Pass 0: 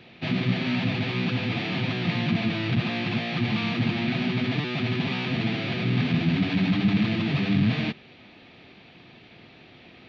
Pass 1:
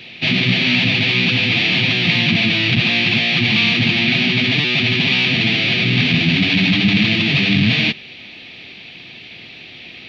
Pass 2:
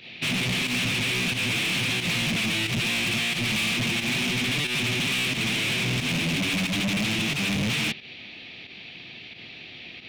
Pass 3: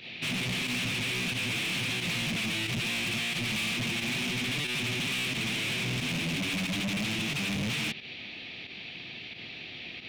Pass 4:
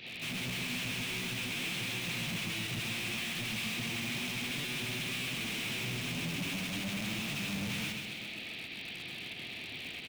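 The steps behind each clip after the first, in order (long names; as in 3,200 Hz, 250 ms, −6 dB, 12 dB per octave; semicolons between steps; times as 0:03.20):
high shelf with overshoot 1,800 Hz +9.5 dB, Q 1.5; level +6 dB
gain into a clipping stage and back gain 18.5 dB; fake sidechain pumping 90 BPM, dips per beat 1, −9 dB, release 90 ms; level −5 dB
brickwall limiter −29 dBFS, peak gain reduction 5.5 dB
in parallel at −4 dB: wrap-around overflow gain 33.5 dB; on the sum: repeating echo 132 ms, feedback 58%, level −6 dB; level −6 dB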